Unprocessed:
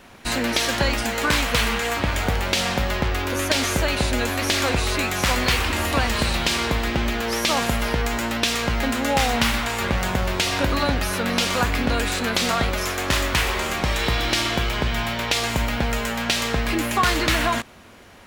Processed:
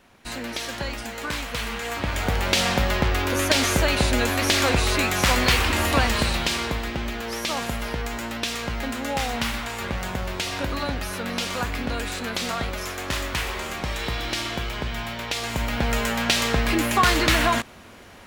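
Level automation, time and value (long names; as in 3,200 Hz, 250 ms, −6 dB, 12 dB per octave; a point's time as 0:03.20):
0:01.56 −9 dB
0:02.54 +1 dB
0:06.01 +1 dB
0:06.94 −6 dB
0:15.38 −6 dB
0:15.98 +1 dB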